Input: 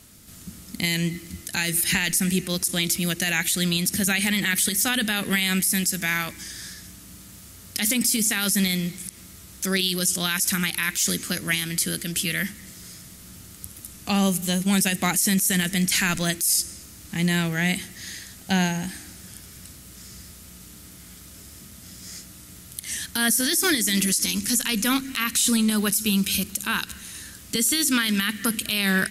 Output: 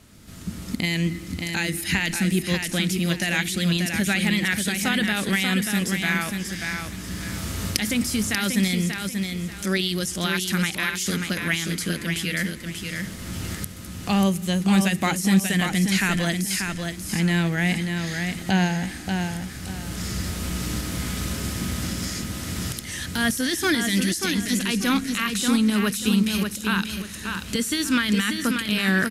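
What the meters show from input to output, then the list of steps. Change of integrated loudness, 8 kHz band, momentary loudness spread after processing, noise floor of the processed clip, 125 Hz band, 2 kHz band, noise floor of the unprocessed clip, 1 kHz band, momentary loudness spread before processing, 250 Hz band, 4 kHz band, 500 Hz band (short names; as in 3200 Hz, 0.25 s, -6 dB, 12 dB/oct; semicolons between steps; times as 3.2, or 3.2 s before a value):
-1.5 dB, -6.0 dB, 9 LU, -36 dBFS, +3.5 dB, +1.0 dB, -45 dBFS, +2.5 dB, 20 LU, +3.0 dB, -1.0 dB, +2.5 dB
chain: recorder AGC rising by 14 dB/s; LPF 2800 Hz 6 dB/oct; feedback echo 0.587 s, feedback 29%, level -5.5 dB; gain +1.5 dB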